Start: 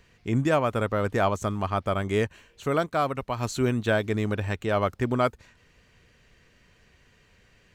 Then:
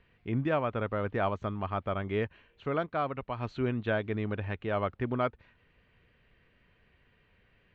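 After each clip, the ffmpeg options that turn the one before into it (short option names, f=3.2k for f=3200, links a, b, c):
-af "lowpass=f=3.3k:w=0.5412,lowpass=f=3.3k:w=1.3066,volume=-6dB"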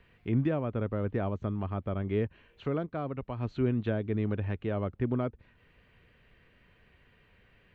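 -filter_complex "[0:a]acrossover=split=460[a][b];[b]acompressor=threshold=-49dB:ratio=2.5[c];[a][c]amix=inputs=2:normalize=0,volume=3.5dB"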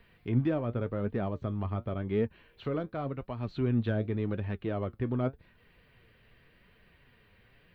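-filter_complex "[0:a]aexciter=amount=1.1:drive=5.9:freq=3.7k,asplit=2[a][b];[b]asoftclip=type=tanh:threshold=-34dB,volume=-10.5dB[c];[a][c]amix=inputs=2:normalize=0,flanger=delay=4.2:depth=5.8:regen=63:speed=0.89:shape=triangular,volume=2.5dB"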